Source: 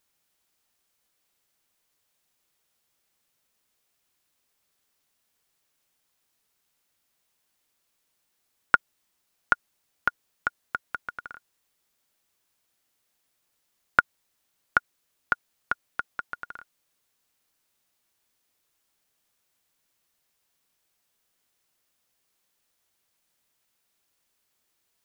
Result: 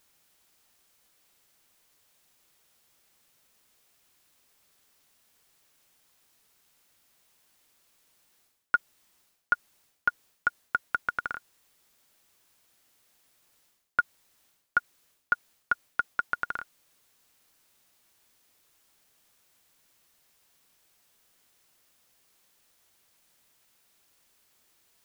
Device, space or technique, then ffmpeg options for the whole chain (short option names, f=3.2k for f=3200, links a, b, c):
compression on the reversed sound: -af "areverse,acompressor=threshold=-30dB:ratio=12,areverse,volume=8dB"